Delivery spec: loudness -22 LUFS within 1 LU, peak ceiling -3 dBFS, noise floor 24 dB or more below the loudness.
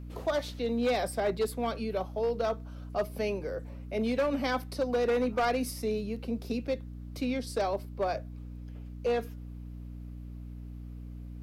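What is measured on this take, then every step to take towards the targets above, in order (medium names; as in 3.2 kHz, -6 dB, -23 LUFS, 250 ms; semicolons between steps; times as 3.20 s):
clipped samples 1.7%; clipping level -23.0 dBFS; hum 60 Hz; highest harmonic 300 Hz; hum level -40 dBFS; loudness -32.0 LUFS; peak level -23.0 dBFS; loudness target -22.0 LUFS
-> clip repair -23 dBFS; de-hum 60 Hz, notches 5; trim +10 dB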